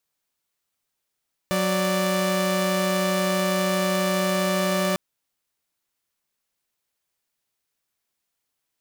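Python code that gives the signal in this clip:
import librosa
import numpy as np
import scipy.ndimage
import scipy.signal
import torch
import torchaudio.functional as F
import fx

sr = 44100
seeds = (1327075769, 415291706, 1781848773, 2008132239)

y = fx.chord(sr, length_s=3.45, notes=(54, 74), wave='saw', level_db=-21.0)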